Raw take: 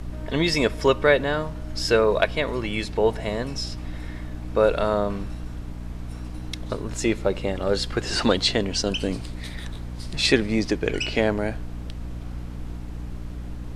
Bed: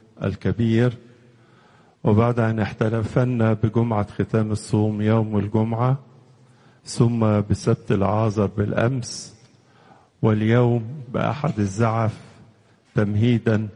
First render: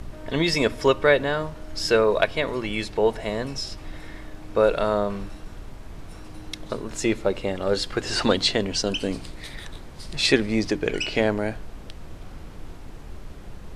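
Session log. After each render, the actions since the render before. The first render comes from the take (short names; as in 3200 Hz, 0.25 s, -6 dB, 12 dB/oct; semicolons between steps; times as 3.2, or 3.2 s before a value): notches 60/120/180/240/300 Hz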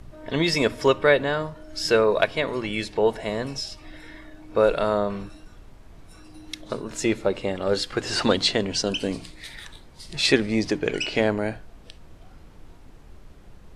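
noise print and reduce 8 dB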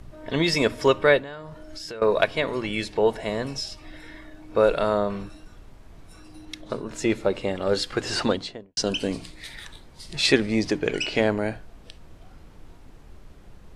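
1.18–2.02 compressor, threshold -34 dBFS; 6.45–7.1 high shelf 3600 Hz -5.5 dB; 8.07–8.77 studio fade out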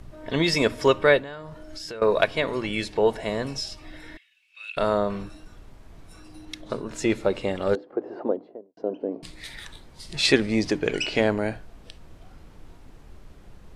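4.17–4.77 ladder high-pass 2500 Hz, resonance 80%; 7.75–9.23 Butterworth band-pass 460 Hz, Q 0.99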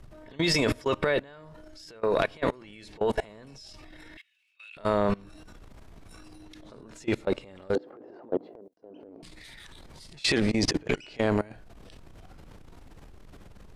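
transient shaper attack -7 dB, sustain +11 dB; level quantiser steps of 24 dB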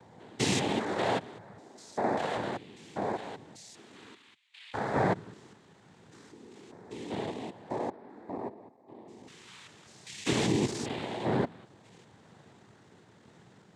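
stepped spectrum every 0.2 s; noise vocoder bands 6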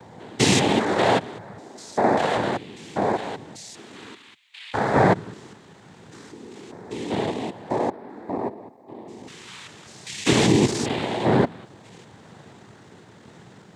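gain +10 dB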